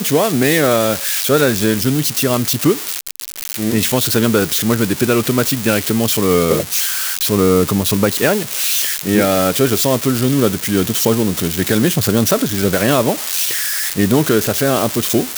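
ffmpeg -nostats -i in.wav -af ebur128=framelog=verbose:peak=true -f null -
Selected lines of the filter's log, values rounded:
Integrated loudness:
  I:         -15.0 LUFS
  Threshold: -25.1 LUFS
Loudness range:
  LRA:         1.4 LU
  Threshold: -35.1 LUFS
  LRA low:   -16.0 LUFS
  LRA high:  -14.6 LUFS
True peak:
  Peak:       -1.9 dBFS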